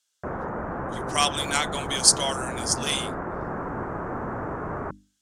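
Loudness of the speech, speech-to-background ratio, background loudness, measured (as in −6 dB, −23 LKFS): −23.5 LKFS, 8.5 dB, −32.0 LKFS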